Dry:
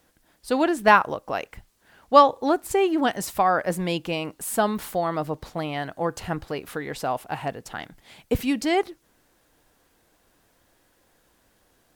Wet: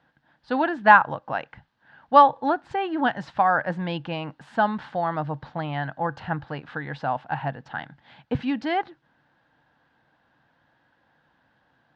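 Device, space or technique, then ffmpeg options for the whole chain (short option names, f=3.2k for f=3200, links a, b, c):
guitar cabinet: -af "highpass=84,equalizer=f=140:t=q:w=4:g=10,equalizer=f=250:t=q:w=4:g=3,equalizer=f=400:t=q:w=4:g=-9,equalizer=f=860:t=q:w=4:g=8,equalizer=f=1.6k:t=q:w=4:g=9,equalizer=f=2.3k:t=q:w=4:g=-4,lowpass=f=3.8k:w=0.5412,lowpass=f=3.8k:w=1.3066,volume=-3dB"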